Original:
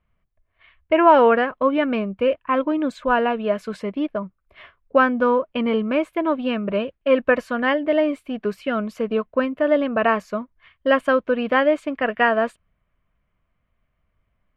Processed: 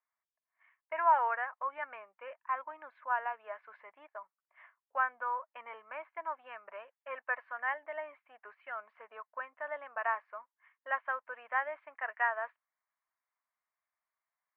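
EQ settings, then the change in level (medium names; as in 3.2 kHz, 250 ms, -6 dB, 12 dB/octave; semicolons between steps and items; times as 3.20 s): ladder high-pass 760 Hz, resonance 60%; four-pole ladder low-pass 2.2 kHz, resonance 55%; distance through air 62 m; 0.0 dB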